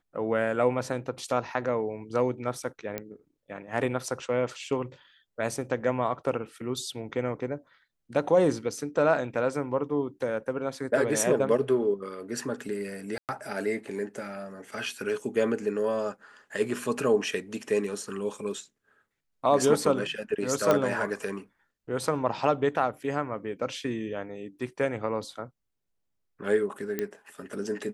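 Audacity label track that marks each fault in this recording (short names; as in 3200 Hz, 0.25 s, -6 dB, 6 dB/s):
2.980000	2.980000	pop -16 dBFS
13.180000	13.290000	gap 0.108 s
20.710000	20.710000	pop -10 dBFS
26.990000	26.990000	pop -15 dBFS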